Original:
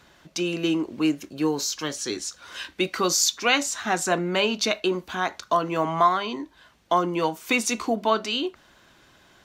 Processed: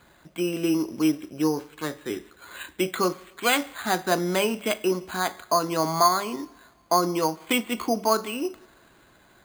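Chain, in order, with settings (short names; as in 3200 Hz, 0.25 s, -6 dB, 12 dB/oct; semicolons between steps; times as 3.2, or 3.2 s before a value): two-slope reverb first 0.77 s, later 2.8 s, DRR 16 dB; careless resampling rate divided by 8×, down filtered, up hold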